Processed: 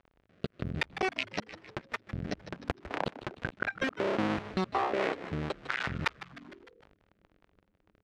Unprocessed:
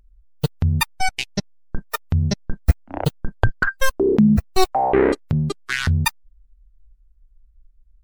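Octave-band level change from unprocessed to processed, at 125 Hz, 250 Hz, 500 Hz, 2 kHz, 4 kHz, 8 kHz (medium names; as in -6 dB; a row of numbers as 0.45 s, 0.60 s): -18.5 dB, -15.0 dB, -12.0 dB, -9.0 dB, -11.5 dB, -21.5 dB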